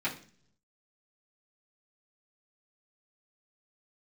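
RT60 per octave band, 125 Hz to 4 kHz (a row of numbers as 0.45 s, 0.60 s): 1.0 s, 0.80 s, 0.55 s, 0.40 s, 0.45 s, 0.50 s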